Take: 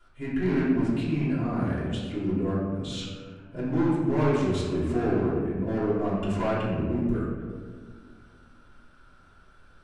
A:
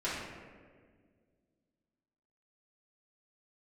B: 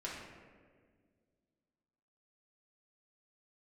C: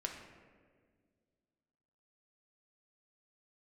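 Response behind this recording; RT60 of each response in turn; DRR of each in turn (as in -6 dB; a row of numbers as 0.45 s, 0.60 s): A; 1.8 s, 1.8 s, 1.8 s; -11.0 dB, -6.0 dB, 1.0 dB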